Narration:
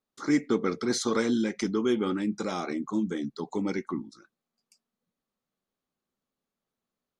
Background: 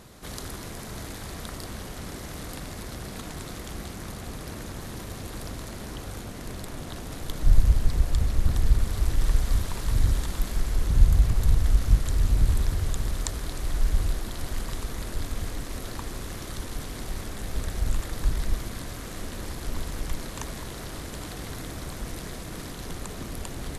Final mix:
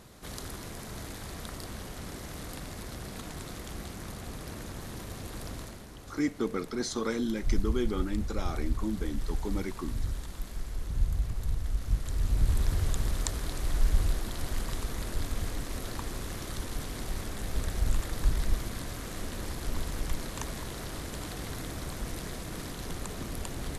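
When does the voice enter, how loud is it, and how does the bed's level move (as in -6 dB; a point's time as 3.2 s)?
5.90 s, -5.0 dB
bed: 5.61 s -3.5 dB
5.87 s -10.5 dB
11.73 s -10.5 dB
12.77 s -1.5 dB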